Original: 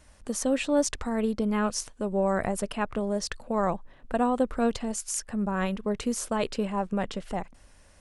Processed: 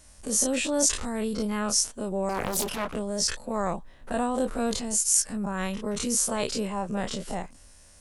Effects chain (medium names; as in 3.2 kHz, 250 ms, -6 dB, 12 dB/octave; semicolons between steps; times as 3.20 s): every event in the spectrogram widened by 60 ms; tone controls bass +2 dB, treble +11 dB; 2.29–2.95 s: loudspeaker Doppler distortion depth 0.89 ms; trim -5 dB